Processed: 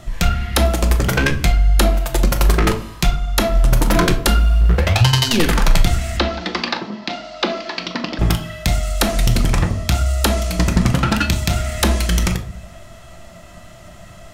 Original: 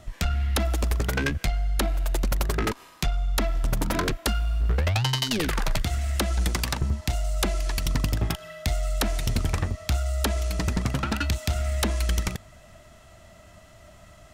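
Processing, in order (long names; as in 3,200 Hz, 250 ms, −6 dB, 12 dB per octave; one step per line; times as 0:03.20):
0:06.17–0:08.19: elliptic band-pass filter 230–4,600 Hz, stop band 40 dB
on a send: convolution reverb RT60 0.45 s, pre-delay 6 ms, DRR 5 dB
on the sum: level +8.5 dB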